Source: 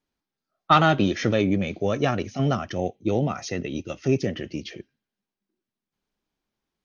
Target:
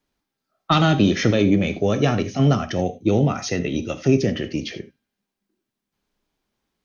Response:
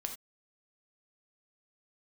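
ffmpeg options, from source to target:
-filter_complex "[0:a]acrossover=split=370|3000[a][b][c];[b]acompressor=threshold=-30dB:ratio=2.5[d];[a][d][c]amix=inputs=3:normalize=0,asplit=2[e][f];[1:a]atrim=start_sample=2205[g];[f][g]afir=irnorm=-1:irlink=0,volume=1.5dB[h];[e][h]amix=inputs=2:normalize=0"

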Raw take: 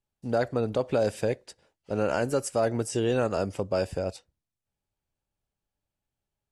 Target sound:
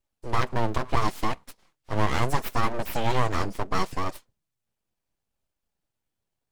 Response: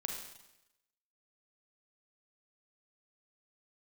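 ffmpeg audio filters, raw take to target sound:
-af "flanger=delay=3.2:depth=6:regen=4:speed=0.73:shape=sinusoidal,aeval=exprs='abs(val(0))':c=same,volume=7dB"

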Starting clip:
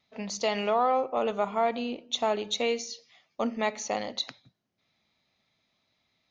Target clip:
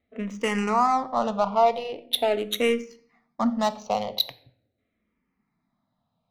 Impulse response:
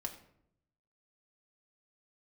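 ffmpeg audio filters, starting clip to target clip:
-filter_complex "[0:a]adynamicsmooth=sensitivity=3.5:basefreq=1.2k,asplit=2[a][b];[1:a]atrim=start_sample=2205,lowshelf=f=230:g=6.5,highshelf=f=2.3k:g=11.5[c];[b][c]afir=irnorm=-1:irlink=0,volume=-8dB[d];[a][d]amix=inputs=2:normalize=0,asplit=2[e][f];[f]afreqshift=-0.42[g];[e][g]amix=inputs=2:normalize=1,volume=4.5dB"

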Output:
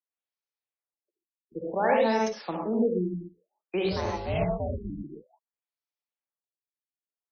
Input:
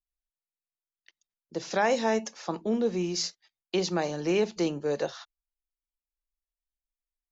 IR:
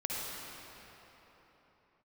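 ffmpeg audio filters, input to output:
-filter_complex "[0:a]asettb=1/sr,asplit=3[a][b][c];[a]atrim=end=3.854[d];[b]atrim=start=3.85:end=4.9,asetpts=PTS-STARTPTS,afade=t=in:d=0.004:c=qsin,afade=t=out:st=1.046:d=0.004:c=qsin,aeval=exprs='val(0)*sin(2*PI*250*n/s)':c=same[e];[c]atrim=start=4.896[f];[d][e]acrossfade=d=0.004:c1=hsin:c2=qsin[g];[g][f]acrossfade=d=0.004:c1=qsin:c2=hsin,acrossover=split=260[h][i];[h]aeval=exprs='sgn(val(0))*max(abs(val(0))-0.00211,0)':c=same[j];[j][i]amix=inputs=2:normalize=0[k];[1:a]atrim=start_sample=2205,afade=t=out:st=0.19:d=0.01,atrim=end_sample=8820[l];[k][l]afir=irnorm=-1:irlink=0,afftfilt=real='re*lt(b*sr/1024,340*pow(6500/340,0.5+0.5*sin(2*PI*0.55*pts/sr)))':imag='im*lt(b*sr/1024,340*pow(6500/340,0.5+0.5*sin(2*PI*0.55*pts/sr)))':win_size=1024:overlap=0.75"

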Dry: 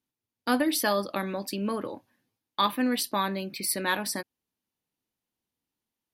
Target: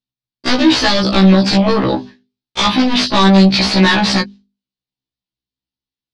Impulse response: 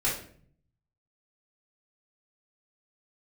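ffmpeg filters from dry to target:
-af "asoftclip=type=hard:threshold=-24dB,acompressor=threshold=-33dB:ratio=6,bass=f=250:g=11,treble=f=4k:g=4,agate=range=-33dB:threshold=-50dB:ratio=3:detection=peak,equalizer=f=4.1k:w=1.2:g=10.5,aeval=exprs='0.299*sin(PI/2*7.94*val(0)/0.299)':c=same,lowpass=f=5.2k:w=0.5412,lowpass=f=5.2k:w=1.3066,bandreject=f=50:t=h:w=6,bandreject=f=100:t=h:w=6,bandreject=f=150:t=h:w=6,bandreject=f=200:t=h:w=6,bandreject=f=250:t=h:w=6,bandreject=f=300:t=h:w=6,bandreject=f=350:t=h:w=6,bandreject=f=400:t=h:w=6,afftfilt=real='re*1.73*eq(mod(b,3),0)':imag='im*1.73*eq(mod(b,3),0)':win_size=2048:overlap=0.75,volume=4.5dB"

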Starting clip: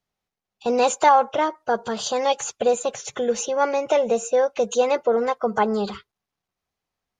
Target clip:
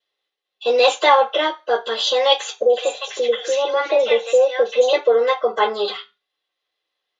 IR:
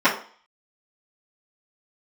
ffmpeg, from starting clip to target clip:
-filter_complex "[0:a]equalizer=f=3.5k:w=1.9:g=12,asettb=1/sr,asplit=3[a][b][c];[a]atrim=end=2.564[d];[b]atrim=start=2.56:end=4.93,asetpts=PTS-STARTPTS,afade=t=in:d=0.004:c=qsin,afade=t=out:st=2.366:d=0.004:c=qsin,acrossover=split=850|4600[e][f][g];[g]adelay=90[h];[f]adelay=160[i];[e][i][h]amix=inputs=3:normalize=0,atrim=end_sample=104517[j];[c]atrim=start=4.926[k];[d][j]acrossfade=d=0.004:c1=hsin:c2=qsin[l];[l][k]acrossfade=d=0.004:c1=qsin:c2=hsin[m];[1:a]atrim=start_sample=2205,asetrate=83790,aresample=44100[n];[m][n]afir=irnorm=-1:irlink=0,volume=-12.5dB"

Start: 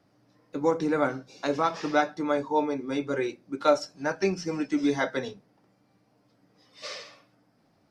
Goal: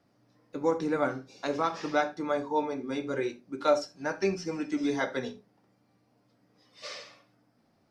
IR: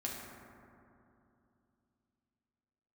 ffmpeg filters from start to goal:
-filter_complex "[0:a]asplit=2[a][b];[1:a]atrim=start_sample=2205,atrim=end_sample=3969[c];[b][c]afir=irnorm=-1:irlink=0,volume=-4.5dB[d];[a][d]amix=inputs=2:normalize=0,volume=-6dB"

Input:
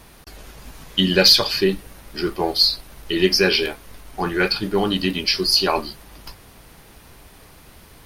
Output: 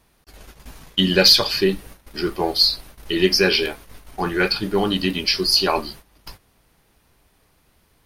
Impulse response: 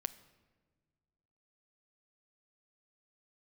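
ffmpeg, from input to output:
-af "agate=range=-14dB:threshold=-39dB:ratio=16:detection=peak"

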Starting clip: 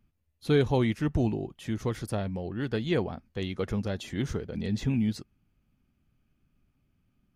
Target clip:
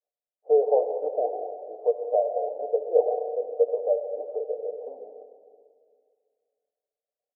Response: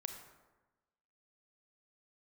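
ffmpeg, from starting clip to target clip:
-filter_complex "[0:a]agate=range=-33dB:threshold=-59dB:ratio=3:detection=peak,asuperpass=centerf=590:order=8:qfactor=2.1,aecho=1:1:6.7:0.48,asplit=2[a][b];[1:a]atrim=start_sample=2205,asetrate=22932,aresample=44100[c];[b][c]afir=irnorm=-1:irlink=0,volume=4dB[d];[a][d]amix=inputs=2:normalize=0,volume=4dB"

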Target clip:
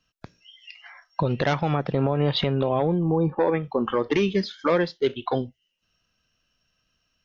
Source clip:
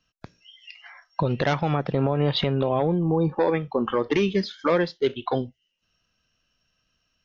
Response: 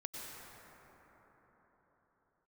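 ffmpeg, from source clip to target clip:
-filter_complex "[0:a]asplit=3[a][b][c];[a]afade=t=out:st=3.17:d=0.02[d];[b]lowpass=2.7k,afade=t=in:st=3.17:d=0.02,afade=t=out:st=3.62:d=0.02[e];[c]afade=t=in:st=3.62:d=0.02[f];[d][e][f]amix=inputs=3:normalize=0"

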